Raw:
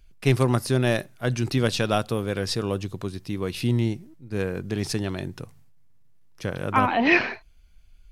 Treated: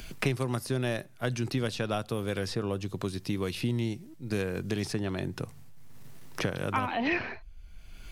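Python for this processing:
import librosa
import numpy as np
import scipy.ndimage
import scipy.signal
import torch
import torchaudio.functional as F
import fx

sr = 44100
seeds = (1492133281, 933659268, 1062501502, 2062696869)

y = fx.band_squash(x, sr, depth_pct=100)
y = y * 10.0 ** (-7.0 / 20.0)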